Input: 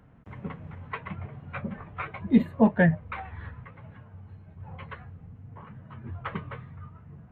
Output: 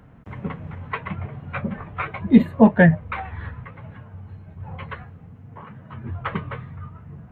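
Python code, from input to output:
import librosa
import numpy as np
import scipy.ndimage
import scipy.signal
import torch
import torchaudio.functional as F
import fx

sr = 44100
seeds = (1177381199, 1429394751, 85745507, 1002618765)

y = fx.low_shelf(x, sr, hz=93.0, db=-11.0, at=(5.04, 5.93))
y = y * librosa.db_to_amplitude(7.0)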